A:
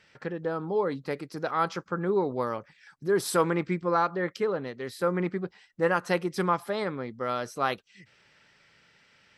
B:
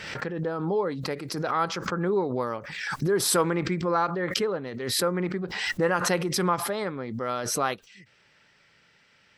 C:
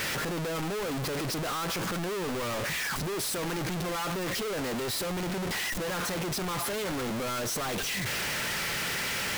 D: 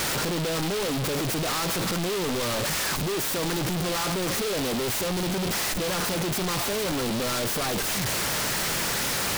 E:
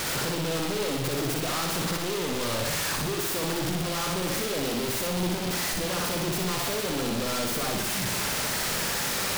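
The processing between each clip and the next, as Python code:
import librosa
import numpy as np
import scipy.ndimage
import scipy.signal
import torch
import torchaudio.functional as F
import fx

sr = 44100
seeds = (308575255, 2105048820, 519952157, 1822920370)

y1 = fx.pre_swell(x, sr, db_per_s=42.0)
y2 = np.sign(y1) * np.sqrt(np.mean(np.square(y1)))
y2 = y2 * 10.0 ** (-3.5 / 20.0)
y3 = fx.noise_mod_delay(y2, sr, seeds[0], noise_hz=3100.0, depth_ms=0.12)
y3 = y3 * 10.0 ** (5.0 / 20.0)
y4 = fx.echo_feedback(y3, sr, ms=61, feedback_pct=56, wet_db=-4)
y4 = y4 * 10.0 ** (-3.5 / 20.0)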